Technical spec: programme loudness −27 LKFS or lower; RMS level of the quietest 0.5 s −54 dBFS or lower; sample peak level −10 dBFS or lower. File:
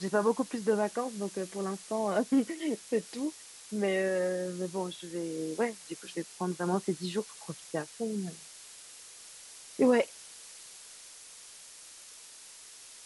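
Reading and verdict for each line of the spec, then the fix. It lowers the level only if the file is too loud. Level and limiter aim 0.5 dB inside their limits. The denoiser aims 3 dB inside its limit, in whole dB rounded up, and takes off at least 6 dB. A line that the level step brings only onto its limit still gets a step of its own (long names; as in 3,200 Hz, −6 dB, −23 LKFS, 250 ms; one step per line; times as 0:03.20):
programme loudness −32.5 LKFS: in spec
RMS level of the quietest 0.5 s −51 dBFS: out of spec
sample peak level −15.0 dBFS: in spec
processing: broadband denoise 6 dB, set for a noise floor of −51 dBFS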